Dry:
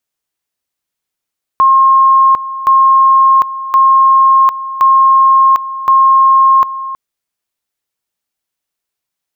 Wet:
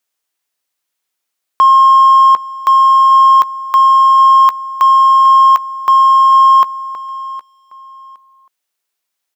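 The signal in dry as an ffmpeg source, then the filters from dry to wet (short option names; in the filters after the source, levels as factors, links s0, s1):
-f lavfi -i "aevalsrc='pow(10,(-4-14.5*gte(mod(t,1.07),0.75))/20)*sin(2*PI*1070*t)':d=5.35:s=44100"
-filter_complex "[0:a]highpass=f=500:p=1,asplit=2[s0][s1];[s1]asoftclip=type=tanh:threshold=0.15,volume=0.631[s2];[s0][s2]amix=inputs=2:normalize=0,aecho=1:1:764|1528:0.141|0.0353"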